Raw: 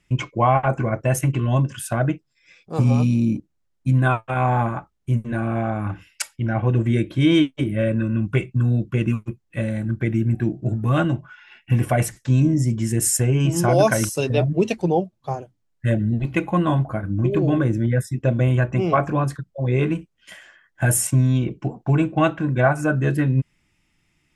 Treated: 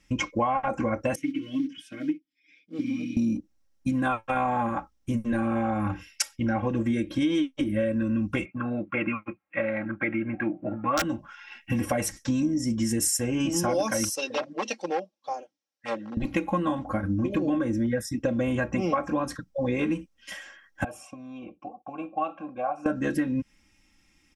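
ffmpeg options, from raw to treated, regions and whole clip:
-filter_complex "[0:a]asettb=1/sr,asplit=3[s0][s1][s2];[s0]atrim=end=1.154[s3];[s1]atrim=start=1.15:end=3.17,asetpts=PTS-STARTPTS,afade=t=in:d=0.004:c=qsin,afade=t=out:st=2.016:d=0.004:c=qsin,aecho=1:1:6.4:0.92,atrim=end_sample=89082,acrusher=bits=7:mode=log:mix=0:aa=0.000001,asplit=3[s4][s5][s6];[s4]bandpass=f=270:t=q:w=8,volume=1[s7];[s5]bandpass=f=2290:t=q:w=8,volume=0.501[s8];[s6]bandpass=f=3010:t=q:w=8,volume=0.355[s9];[s7][s8][s9]amix=inputs=3:normalize=0[s10];[s2]atrim=start=3.166[s11];[s3][s10]acrossfade=d=0.004:c1=hsin:c2=qsin[s12];[s12][s11]acrossfade=d=0.004:c1=qsin:c2=hsin,asettb=1/sr,asplit=3[s13][s14][s15];[s13]atrim=end=8.454[s16];[s14]atrim=start=8.45:end=11.02,asetpts=PTS-STARTPTS,afade=t=in:d=0.004:c=qsin,afade=t=out:st=2.566:d=0.004:c=qsin,highpass=210,equalizer=f=230:t=q:w=4:g=-8,equalizer=f=420:t=q:w=4:g=-10,equalizer=f=650:t=q:w=4:g=6,equalizer=f=920:t=q:w=4:g=4,equalizer=f=1300:t=q:w=4:g=9,equalizer=f=2300:t=q:w=4:g=9,lowpass=f=2500:w=0.5412,lowpass=f=2500:w=1.3066,aeval=exprs='(mod(2.37*val(0)+1,2)-1)/2.37':c=same[s17];[s15]atrim=start=11.016[s18];[s16][s17]acrossfade=d=0.004:c1=hsin:c2=qsin[s19];[s19][s18]acrossfade=d=0.004:c1=qsin:c2=hsin,asettb=1/sr,asplit=3[s20][s21][s22];[s20]atrim=end=14.154[s23];[s21]atrim=start=14.15:end=16.17,asetpts=PTS-STARTPTS,afade=t=in:d=0.004:c=qsin,afade=t=out:st=2.016:d=0.004:c=qsin,equalizer=f=1300:t=o:w=2.2:g=-8,aeval=exprs='0.188*(abs(mod(val(0)/0.188+3,4)-2)-1)':c=same,highpass=600,lowpass=4900[s24];[s22]atrim=start=16.166[s25];[s23][s24]acrossfade=d=0.004:c1=hsin:c2=qsin[s26];[s26][s25]acrossfade=d=0.004:c1=qsin:c2=hsin,asettb=1/sr,asplit=3[s27][s28][s29];[s27]atrim=end=20.844[s30];[s28]atrim=start=20.84:end=22.86,asetpts=PTS-STARTPTS,afade=t=in:d=0.004:c=qsin,afade=t=out:st=2.016:d=0.004:c=qsin,lowshelf=f=230:g=10.5,acompressor=threshold=0.282:ratio=3:attack=3.2:release=140:knee=1:detection=peak,asplit=3[s31][s32][s33];[s31]bandpass=f=730:t=q:w=8,volume=1[s34];[s32]bandpass=f=1090:t=q:w=8,volume=0.501[s35];[s33]bandpass=f=2440:t=q:w=8,volume=0.355[s36];[s34][s35][s36]amix=inputs=3:normalize=0[s37];[s29]atrim=start=22.856[s38];[s30][s37]acrossfade=d=0.004:c1=hsin:c2=qsin[s39];[s39][s38]acrossfade=d=0.004:c1=qsin:c2=hsin,equalizer=f=5600:t=o:w=0.22:g=9.5,aecho=1:1:3.7:0.82,acompressor=threshold=0.0708:ratio=6"

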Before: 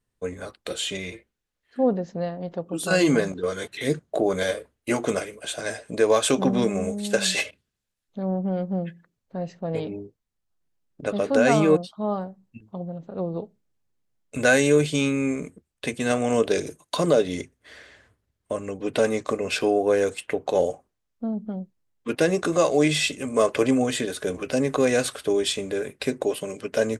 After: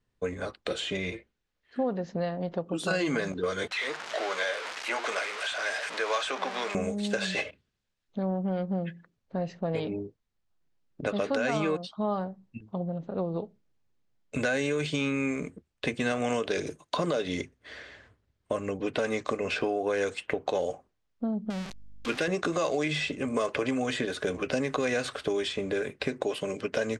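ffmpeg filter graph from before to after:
-filter_complex "[0:a]asettb=1/sr,asplit=3[s0][s1][s2];[s0]atrim=end=3.714[s3];[s1]atrim=start=3.71:end=6.75,asetpts=PTS-STARTPTS,afade=t=in:d=0.004:c=qsin,afade=t=out:st=3.036:d=0.004:c=qsin,aeval=exprs='val(0)+0.5*0.0596*sgn(val(0))':c=same,highpass=1100,adynamicsmooth=sensitivity=5.5:basefreq=7700[s4];[s2]atrim=start=6.746[s5];[s3][s4]acrossfade=d=0.004:c1=hsin:c2=qsin[s6];[s6][s5]acrossfade=d=0.004:c1=qsin:c2=hsin,asettb=1/sr,asplit=3[s7][s8][s9];[s7]atrim=end=21.504[s10];[s8]atrim=start=21.5:end=22.28,asetpts=PTS-STARTPTS,afade=t=in:d=0.004:c=qsin,afade=t=out:st=0.776:d=0.004:c=qsin,aeval=exprs='val(0)+0.5*0.0251*sgn(val(0))':c=same,tiltshelf=f=1300:g=-6.5,aeval=exprs='val(0)+0.00112*(sin(2*PI*50*n/s)+sin(2*PI*2*50*n/s)/2+sin(2*PI*3*50*n/s)/3+sin(2*PI*4*50*n/s)/4+sin(2*PI*5*50*n/s)/5)':c=same[s11];[s9]atrim=start=22.276[s12];[s10][s11]acrossfade=d=0.004:c1=hsin:c2=qsin[s13];[s13][s12]acrossfade=d=0.004:c1=qsin:c2=hsin,alimiter=limit=0.211:level=0:latency=1:release=105,lowpass=5400,acrossover=split=960|2100[s14][s15][s16];[s14]acompressor=threshold=0.0316:ratio=4[s17];[s15]acompressor=threshold=0.0178:ratio=4[s18];[s16]acompressor=threshold=0.0112:ratio=4[s19];[s17][s18][s19]amix=inputs=3:normalize=0,volume=1.26"

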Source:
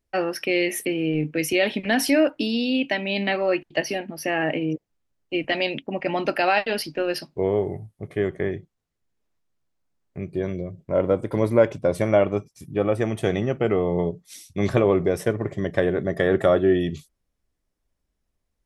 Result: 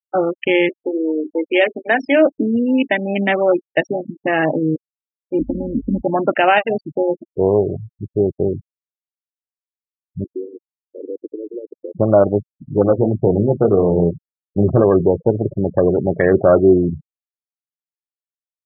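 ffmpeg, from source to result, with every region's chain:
-filter_complex "[0:a]asettb=1/sr,asplit=3[s0][s1][s2];[s0]atrim=end=0.694[s3];[s1]atrim=start=0.69:end=2.26,asetpts=PTS-STARTPTS,afade=t=in:d=0.004:c=qsin,afade=t=out:st=1.566:d=0.004:c=qsin,highpass=f=310:w=0.5412,highpass=f=310:w=1.3066,bandreject=f=50:t=h:w=6,bandreject=f=100:t=h:w=6,bandreject=f=150:t=h:w=6,bandreject=f=200:t=h:w=6,bandreject=f=250:t=h:w=6,bandreject=f=300:t=h:w=6,bandreject=f=350:t=h:w=6,bandreject=f=400:t=h:w=6[s4];[s2]atrim=start=2.256[s5];[s3][s4]acrossfade=d=0.004:c1=hsin:c2=qsin[s6];[s6][s5]acrossfade=d=0.004:c1=qsin:c2=hsin,asettb=1/sr,asplit=3[s7][s8][s9];[s7]atrim=end=5.394[s10];[s8]atrim=start=5.39:end=6.02,asetpts=PTS-STARTPTS,afade=t=in:d=0.004:c=qsin,afade=t=out:st=0.626:d=0.004:c=qsin,aeval=exprs='val(0)+0.00708*(sin(2*PI*50*n/s)+sin(2*PI*2*50*n/s)/2+sin(2*PI*3*50*n/s)/3+sin(2*PI*4*50*n/s)/4+sin(2*PI*5*50*n/s)/5)':c=same,lowpass=f=240:t=q:w=2.3,aecho=1:1:3.7:0.52,atrim=end_sample=27783[s11];[s9]atrim=start=6.016[s12];[s10][s11]acrossfade=d=0.004:c1=hsin:c2=qsin[s13];[s13][s12]acrossfade=d=0.004:c1=qsin:c2=hsin,asettb=1/sr,asplit=3[s14][s15][s16];[s14]atrim=end=10.244[s17];[s15]atrim=start=10.24:end=11.95,asetpts=PTS-STARTPTS,afade=t=in:d=0.004:c=qsin,afade=t=out:st=1.706:d=0.004:c=qsin,acompressor=threshold=0.0447:ratio=5:attack=3.2:release=140:knee=1:detection=peak,asuperpass=centerf=370:order=8:qfactor=1.7[s18];[s16]atrim=start=11.946[s19];[s17][s18]acrossfade=d=0.004:c1=hsin:c2=qsin[s20];[s20][s19]acrossfade=d=0.004:c1=qsin:c2=hsin,asettb=1/sr,asplit=3[s21][s22][s23];[s21]atrim=end=12.704[s24];[s22]atrim=start=12.7:end=14.81,asetpts=PTS-STARTPTS,afade=t=in:d=0.004:c=qsin,afade=t=out:st=2.106:d=0.004:c=qsin,lowpass=f=1400:p=1,acontrast=35,flanger=delay=5.9:depth=9.6:regen=-48:speed=1.7:shape=triangular[s25];[s23]atrim=start=14.806[s26];[s24][s25]acrossfade=d=0.004:c1=hsin:c2=qsin[s27];[s27][s26]acrossfade=d=0.004:c1=qsin:c2=hsin,afwtdn=0.0501,afftfilt=real='re*gte(hypot(re,im),0.0398)':imag='im*gte(hypot(re,im),0.0398)':win_size=1024:overlap=0.75,alimiter=level_in=2.66:limit=0.891:release=50:level=0:latency=1,volume=0.891"

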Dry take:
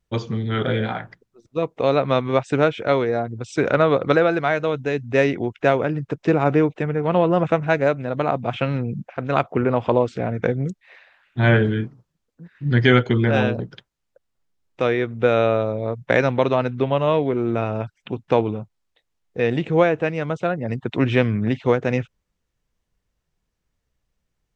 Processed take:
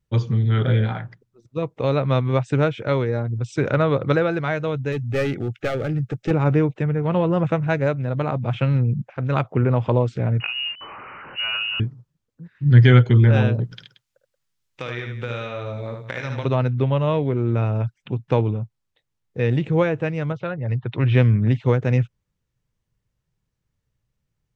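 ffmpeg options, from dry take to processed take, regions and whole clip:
-filter_complex "[0:a]asettb=1/sr,asplit=3[s0][s1][s2];[s0]atrim=end=4.924[s3];[s1]atrim=start=4.92:end=6.31,asetpts=PTS-STARTPTS,afade=t=in:d=0.004:c=qsin,afade=t=out:st=1.386:d=0.004:c=qsin,highshelf=f=5400:g=6,aeval=exprs='clip(val(0),-1,0.112)':c=same,asuperstop=centerf=1000:order=8:qfactor=3.8[s4];[s2]atrim=start=6.306[s5];[s3][s4]acrossfade=d=0.004:c1=hsin:c2=qsin[s6];[s6][s5]acrossfade=d=0.004:c1=qsin:c2=hsin,asettb=1/sr,asplit=3[s7][s8][s9];[s7]atrim=end=10.404[s10];[s8]atrim=start=10.4:end=11.8,asetpts=PTS-STARTPTS,afade=t=in:d=0.004:c=qsin,afade=t=out:st=1.396:d=0.004:c=qsin,aeval=exprs='val(0)+0.5*0.0355*sgn(val(0))':c=same,acompressor=threshold=0.112:ratio=4:attack=3.2:release=140:knee=1:detection=peak,lowpass=f=2600:t=q:w=0.5098,lowpass=f=2600:t=q:w=0.6013,lowpass=f=2600:t=q:w=0.9,lowpass=f=2600:t=q:w=2.563,afreqshift=-3000[s11];[s9]atrim=start=11.796[s12];[s10][s11]acrossfade=d=0.004:c1=hsin:c2=qsin[s13];[s13][s12]acrossfade=d=0.004:c1=qsin:c2=hsin,asettb=1/sr,asplit=3[s14][s15][s16];[s14]atrim=end=13.644[s17];[s15]atrim=start=13.64:end=16.45,asetpts=PTS-STARTPTS,afade=t=in:d=0.004:c=qsin,afade=t=out:st=2.806:d=0.004:c=qsin,tiltshelf=f=1100:g=-7.5,acompressor=threshold=0.0708:ratio=5:attack=3.2:release=140:knee=1:detection=peak,aecho=1:1:52|75|179:0.266|0.562|0.211,atrim=end_sample=123921[s18];[s16]atrim=start=16.446[s19];[s17][s18]acrossfade=d=0.004:c1=hsin:c2=qsin[s20];[s20][s19]acrossfade=d=0.004:c1=qsin:c2=hsin,asettb=1/sr,asplit=3[s21][s22][s23];[s21]atrim=end=20.324[s24];[s22]atrim=start=20.32:end=21.15,asetpts=PTS-STARTPTS,afade=t=in:d=0.004:c=qsin,afade=t=out:st=0.826:d=0.004:c=qsin,lowpass=f=4600:w=0.5412,lowpass=f=4600:w=1.3066,equalizer=f=240:t=o:w=1.3:g=-7[s25];[s23]atrim=start=21.146[s26];[s24][s25]acrossfade=d=0.004:c1=hsin:c2=qsin[s27];[s27][s26]acrossfade=d=0.004:c1=qsin:c2=hsin,equalizer=f=120:w=1.6:g=12,bandreject=f=700:w=12,volume=0.668"

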